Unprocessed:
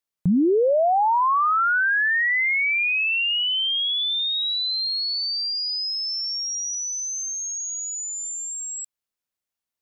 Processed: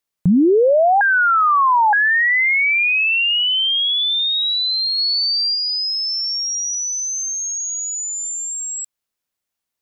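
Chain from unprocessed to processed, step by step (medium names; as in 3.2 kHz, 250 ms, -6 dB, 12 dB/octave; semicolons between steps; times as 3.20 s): 1.01–1.93 s: reverse; 4.98–5.55 s: treble shelf 5.6 kHz +5 dB; trim +5.5 dB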